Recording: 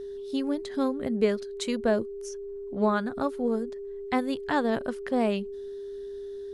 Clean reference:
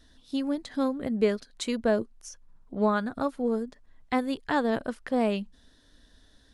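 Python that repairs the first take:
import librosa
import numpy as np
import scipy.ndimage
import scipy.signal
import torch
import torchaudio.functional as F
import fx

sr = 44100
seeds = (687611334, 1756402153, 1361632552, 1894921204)

y = fx.notch(x, sr, hz=400.0, q=30.0)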